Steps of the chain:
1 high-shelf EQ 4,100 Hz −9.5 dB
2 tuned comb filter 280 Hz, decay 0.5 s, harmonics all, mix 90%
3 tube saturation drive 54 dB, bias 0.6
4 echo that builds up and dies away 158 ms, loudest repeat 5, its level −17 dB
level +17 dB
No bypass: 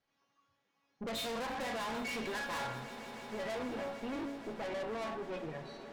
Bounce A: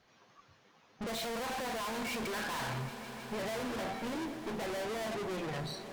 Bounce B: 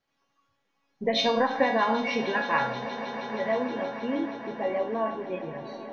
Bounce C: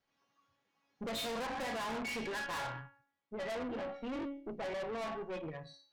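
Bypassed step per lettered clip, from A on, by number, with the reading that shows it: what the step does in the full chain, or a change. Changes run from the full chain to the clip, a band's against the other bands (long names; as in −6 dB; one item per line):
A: 2, 125 Hz band +5.0 dB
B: 3, change in crest factor +7.0 dB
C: 4, echo-to-direct ratio −7.5 dB to none audible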